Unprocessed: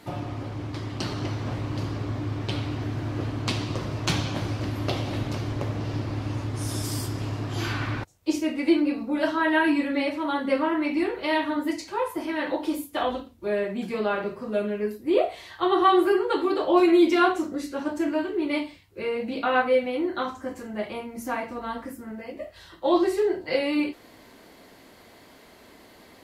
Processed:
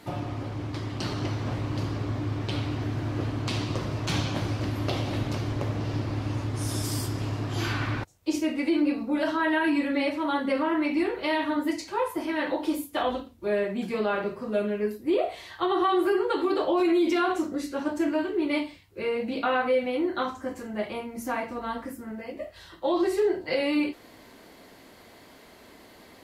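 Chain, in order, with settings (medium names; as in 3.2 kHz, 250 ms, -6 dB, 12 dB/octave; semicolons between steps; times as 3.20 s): peak limiter -16.5 dBFS, peak gain reduction 8 dB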